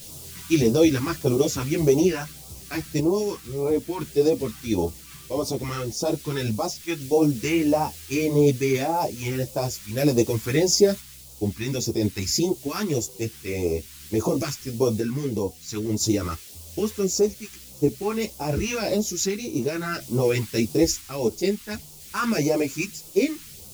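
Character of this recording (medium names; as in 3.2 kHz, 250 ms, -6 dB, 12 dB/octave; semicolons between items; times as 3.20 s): a quantiser's noise floor 8-bit, dither triangular; phasing stages 2, 1.7 Hz, lowest notch 580–1700 Hz; random-step tremolo 1 Hz; a shimmering, thickened sound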